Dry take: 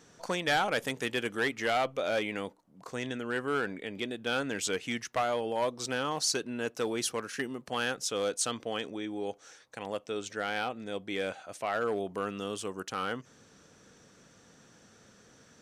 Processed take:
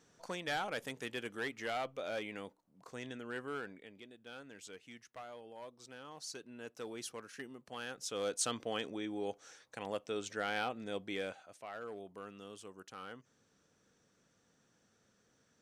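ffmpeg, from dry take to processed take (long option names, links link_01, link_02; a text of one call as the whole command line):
ffmpeg -i in.wav -af "volume=6.5dB,afade=type=out:start_time=3.4:duration=0.64:silence=0.316228,afade=type=in:start_time=6:duration=0.91:silence=0.446684,afade=type=in:start_time=7.88:duration=0.58:silence=0.354813,afade=type=out:start_time=11:duration=0.56:silence=0.281838" out.wav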